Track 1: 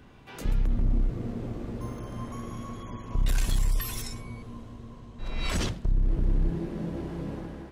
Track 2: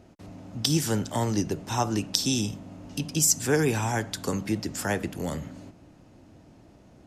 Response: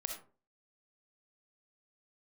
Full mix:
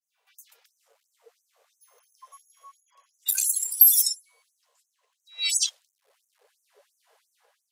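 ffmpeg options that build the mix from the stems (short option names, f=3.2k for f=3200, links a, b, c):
-filter_complex "[0:a]aemphasis=mode=production:type=75kf,aeval=exprs='0.75*(cos(1*acos(clip(val(0)/0.75,-1,1)))-cos(1*PI/2))+0.0596*(cos(6*acos(clip(val(0)/0.75,-1,1)))-cos(6*PI/2))+0.0188*(cos(8*acos(clip(val(0)/0.75,-1,1)))-cos(8*PI/2))':c=same,adynamicequalizer=threshold=0.00708:dfrequency=2400:dqfactor=0.7:tfrequency=2400:tqfactor=0.7:attack=5:release=100:ratio=0.375:range=2.5:mode=boostabove:tftype=highshelf,volume=3dB[a];[1:a]bandreject=f=331.4:t=h:w=4,bandreject=f=662.8:t=h:w=4,bandreject=f=994.2:t=h:w=4,bandreject=f=1.3256k:t=h:w=4,bandreject=f=1.657k:t=h:w=4,bandreject=f=1.9884k:t=h:w=4,bandreject=f=2.3198k:t=h:w=4,bandreject=f=2.6512k:t=h:w=4,bandreject=f=2.9826k:t=h:w=4,bandreject=f=3.314k:t=h:w=4,bandreject=f=3.6454k:t=h:w=4,bandreject=f=3.9768k:t=h:w=4,bandreject=f=4.3082k:t=h:w=4,bandreject=f=4.6396k:t=h:w=4,bandreject=f=4.971k:t=h:w=4,bandreject=f=5.3024k:t=h:w=4,bandreject=f=5.6338k:t=h:w=4,bandreject=f=5.9652k:t=h:w=4,bandreject=f=6.2966k:t=h:w=4,bandreject=f=6.628k:t=h:w=4,acompressor=threshold=-29dB:ratio=16,volume=-12.5dB[b];[a][b]amix=inputs=2:normalize=0,afftdn=nr=21:nf=-22,afftfilt=real='re*gte(b*sr/1024,410*pow(6000/410,0.5+0.5*sin(2*PI*2.9*pts/sr)))':imag='im*gte(b*sr/1024,410*pow(6000/410,0.5+0.5*sin(2*PI*2.9*pts/sr)))':win_size=1024:overlap=0.75"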